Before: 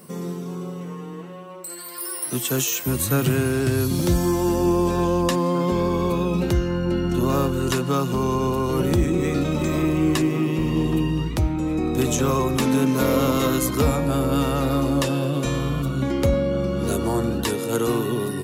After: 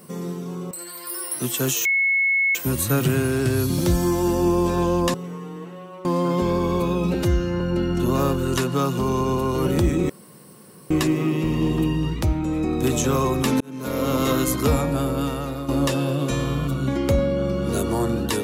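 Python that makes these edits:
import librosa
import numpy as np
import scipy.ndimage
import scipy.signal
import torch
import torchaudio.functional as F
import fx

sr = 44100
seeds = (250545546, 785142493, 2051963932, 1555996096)

y = fx.edit(x, sr, fx.move(start_s=0.71, length_s=0.91, to_s=5.35),
    fx.insert_tone(at_s=2.76, length_s=0.7, hz=2190.0, db=-16.5),
    fx.stretch_span(start_s=6.44, length_s=0.31, factor=1.5),
    fx.room_tone_fill(start_s=9.24, length_s=0.81),
    fx.fade_in_span(start_s=12.75, length_s=0.65),
    fx.fade_out_to(start_s=13.96, length_s=0.87, floor_db=-10.5), tone=tone)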